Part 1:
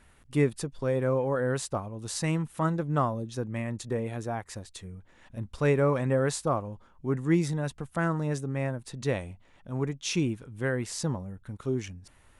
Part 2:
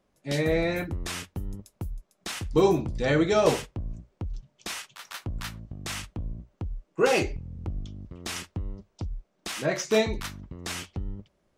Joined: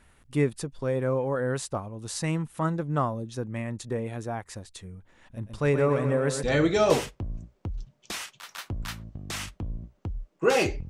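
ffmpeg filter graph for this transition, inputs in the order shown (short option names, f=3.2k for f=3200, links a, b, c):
-filter_complex "[0:a]asettb=1/sr,asplit=3[a][b][c];[a]atrim=end=5.294[d];[b]atrim=start=5.29:end=6.43,asetpts=PTS-STARTPTS,afade=t=in:d=0.004:c=qsin,afade=t=out:st=1.136:d=0.004:c=qsin,aecho=1:1:126|252|378|504|630|756:0.398|0.211|0.112|0.0593|0.0314|0.0166,atrim=end_sample=50274[e];[c]atrim=start=6.426[f];[d][e]acrossfade=d=0.004:c1=hsin:c2=qsin[g];[g][f]acrossfade=d=0.004:c1=qsin:c2=hsin,apad=whole_dur=10.89,atrim=end=10.89,atrim=end=6.432[h];[1:a]atrim=start=2.988:end=7.45[i];[h][i]acrossfade=d=0.004:c1=hsin:c2=hsin"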